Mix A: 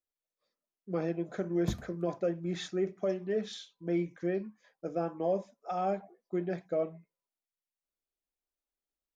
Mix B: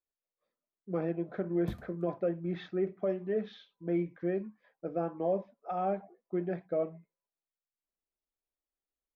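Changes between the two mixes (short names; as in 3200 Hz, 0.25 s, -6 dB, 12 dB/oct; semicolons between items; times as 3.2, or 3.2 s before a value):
speech: add Gaussian blur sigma 2.8 samples; background -4.5 dB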